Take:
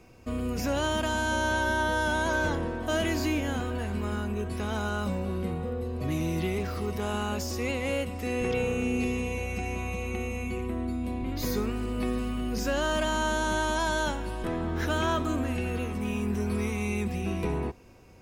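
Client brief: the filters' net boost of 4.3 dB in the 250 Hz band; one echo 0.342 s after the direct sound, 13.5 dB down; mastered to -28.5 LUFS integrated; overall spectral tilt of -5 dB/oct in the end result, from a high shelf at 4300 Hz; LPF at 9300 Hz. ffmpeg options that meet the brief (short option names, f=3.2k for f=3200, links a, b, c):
-af "lowpass=9.3k,equalizer=f=250:t=o:g=5,highshelf=f=4.3k:g=6,aecho=1:1:342:0.211,volume=-1dB"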